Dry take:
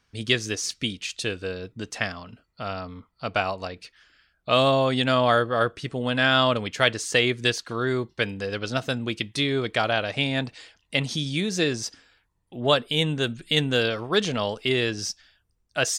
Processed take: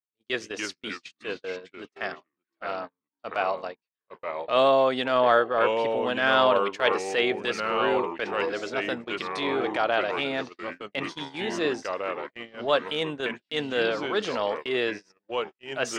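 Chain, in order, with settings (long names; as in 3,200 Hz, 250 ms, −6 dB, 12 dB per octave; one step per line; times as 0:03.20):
low-pass filter 1,400 Hz 6 dB per octave
delay with pitch and tempo change per echo 237 ms, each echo −3 semitones, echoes 3, each echo −6 dB
high-pass filter 420 Hz 12 dB per octave
noise gate −36 dBFS, range −42 dB
transient designer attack −8 dB, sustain 0 dB
level +3.5 dB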